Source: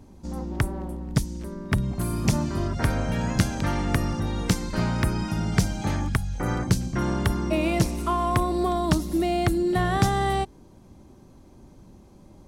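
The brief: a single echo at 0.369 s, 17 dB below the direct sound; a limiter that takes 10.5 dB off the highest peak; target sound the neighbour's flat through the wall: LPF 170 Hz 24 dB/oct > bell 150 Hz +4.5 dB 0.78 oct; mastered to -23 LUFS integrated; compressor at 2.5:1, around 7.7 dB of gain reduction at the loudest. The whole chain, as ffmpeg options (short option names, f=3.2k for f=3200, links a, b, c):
-af "acompressor=threshold=-27dB:ratio=2.5,alimiter=limit=-21dB:level=0:latency=1,lowpass=f=170:w=0.5412,lowpass=f=170:w=1.3066,equalizer=f=150:t=o:w=0.78:g=4.5,aecho=1:1:369:0.141,volume=11.5dB"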